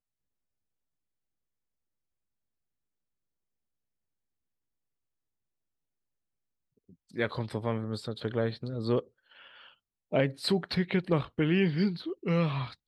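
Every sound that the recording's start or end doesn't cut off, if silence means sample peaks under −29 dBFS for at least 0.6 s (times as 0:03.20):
0:07.18–0:09.00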